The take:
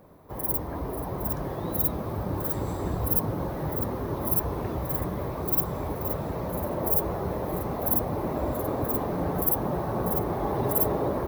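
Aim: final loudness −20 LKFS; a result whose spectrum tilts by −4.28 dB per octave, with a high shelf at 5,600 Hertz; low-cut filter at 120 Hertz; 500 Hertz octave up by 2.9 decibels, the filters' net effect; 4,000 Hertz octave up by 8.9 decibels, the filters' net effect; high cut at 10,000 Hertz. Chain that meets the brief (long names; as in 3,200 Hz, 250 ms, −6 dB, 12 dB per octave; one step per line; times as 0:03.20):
high-pass filter 120 Hz
low-pass filter 10,000 Hz
parametric band 500 Hz +3.5 dB
parametric band 4,000 Hz +7.5 dB
high-shelf EQ 5,600 Hz +8 dB
level +8.5 dB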